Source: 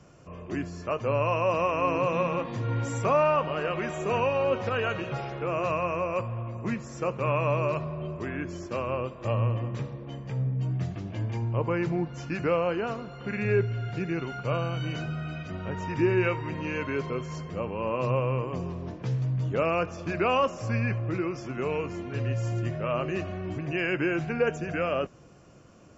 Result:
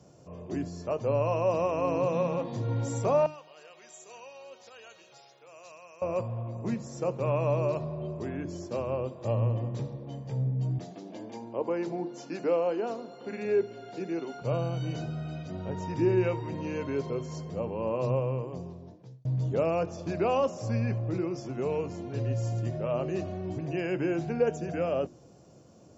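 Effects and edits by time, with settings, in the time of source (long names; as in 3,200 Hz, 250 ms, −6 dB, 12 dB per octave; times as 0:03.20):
0:03.26–0:06.02: first difference
0:10.78–0:14.42: high-pass filter 230 Hz 24 dB per octave
0:18.03–0:19.25: fade out
whole clip: high-pass filter 78 Hz; flat-topped bell 1,800 Hz −10 dB; mains-hum notches 50/100/150/200/250/300/350 Hz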